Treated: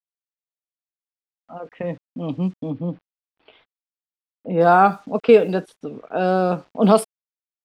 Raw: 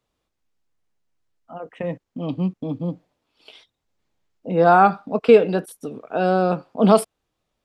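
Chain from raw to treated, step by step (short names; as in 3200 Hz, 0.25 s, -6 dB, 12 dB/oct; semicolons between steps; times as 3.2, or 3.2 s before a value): bit-crush 9-bit; 2.7–4.61 running mean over 6 samples; low-pass opened by the level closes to 2300 Hz, open at -11.5 dBFS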